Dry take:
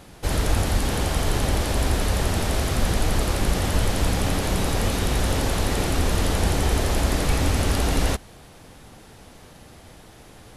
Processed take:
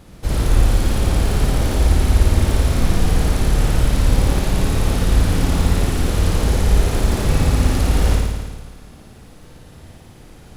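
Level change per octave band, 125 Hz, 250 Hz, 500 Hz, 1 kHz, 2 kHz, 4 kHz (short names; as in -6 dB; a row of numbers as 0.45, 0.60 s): +6.5, +4.0, +1.5, +0.5, 0.0, 0.0 dB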